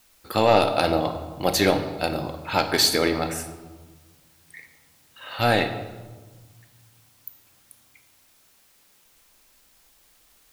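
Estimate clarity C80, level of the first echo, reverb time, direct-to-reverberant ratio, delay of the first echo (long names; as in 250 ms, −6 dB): 11.0 dB, no echo audible, 1.4 s, 7.0 dB, no echo audible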